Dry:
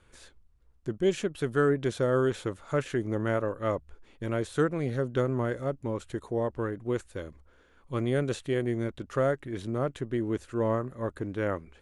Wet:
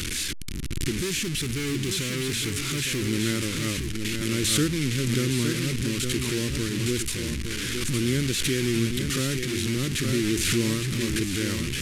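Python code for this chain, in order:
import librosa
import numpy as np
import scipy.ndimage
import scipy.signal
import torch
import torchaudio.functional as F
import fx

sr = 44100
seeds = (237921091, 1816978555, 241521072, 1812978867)

y = fx.delta_mod(x, sr, bps=64000, step_db=-27.0)
y = fx.peak_eq(y, sr, hz=220.0, db=5.0, octaves=2.3)
y = fx.overload_stage(y, sr, gain_db=24.5, at=(0.97, 3.07))
y = fx.curve_eq(y, sr, hz=(340.0, 680.0, 2200.0), db=(0, -23, 6))
y = y + 10.0 ** (-6.5 / 20.0) * np.pad(y, (int(863 * sr / 1000.0), 0))[:len(y)]
y = fx.pre_swell(y, sr, db_per_s=24.0)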